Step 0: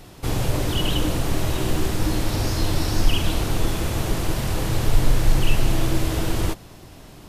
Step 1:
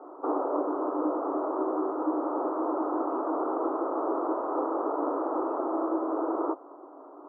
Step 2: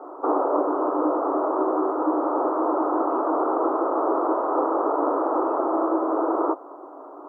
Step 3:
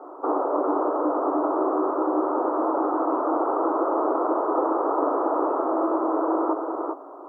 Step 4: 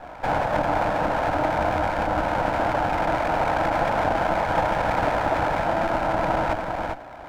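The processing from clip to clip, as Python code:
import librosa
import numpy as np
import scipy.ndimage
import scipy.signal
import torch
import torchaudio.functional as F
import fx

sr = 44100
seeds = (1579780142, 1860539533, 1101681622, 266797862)

y1 = scipy.signal.sosfilt(scipy.signal.cheby1(5, 1.0, [280.0, 1300.0], 'bandpass', fs=sr, output='sos'), x)
y1 = fx.low_shelf(y1, sr, hz=410.0, db=-6.0)
y1 = fx.rider(y1, sr, range_db=10, speed_s=0.5)
y1 = F.gain(torch.from_numpy(y1), 4.5).numpy()
y2 = fx.peak_eq(y1, sr, hz=160.0, db=-6.5, octaves=1.9)
y2 = F.gain(torch.from_numpy(y2), 8.0).numpy()
y3 = y2 + 10.0 ** (-4.0 / 20.0) * np.pad(y2, (int(398 * sr / 1000.0), 0))[:len(y2)]
y3 = F.gain(torch.from_numpy(y3), -2.0).numpy()
y4 = fx.lower_of_two(y3, sr, delay_ms=1.3)
y4 = F.gain(torch.from_numpy(y4), 3.0).numpy()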